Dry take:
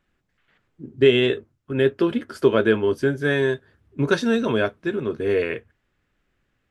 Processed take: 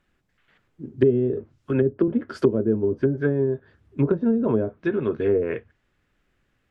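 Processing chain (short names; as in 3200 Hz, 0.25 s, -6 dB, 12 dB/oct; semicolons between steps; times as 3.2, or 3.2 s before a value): treble ducked by the level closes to 320 Hz, closed at -15.5 dBFS; 1.33–2.08 three-band squash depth 40%; gain +1.5 dB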